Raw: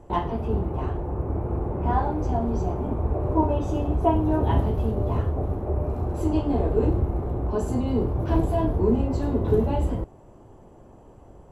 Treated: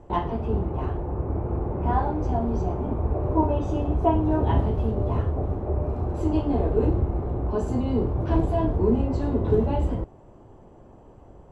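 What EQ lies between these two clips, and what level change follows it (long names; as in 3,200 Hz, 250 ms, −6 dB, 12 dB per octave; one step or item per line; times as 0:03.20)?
high-frequency loss of the air 61 metres
0.0 dB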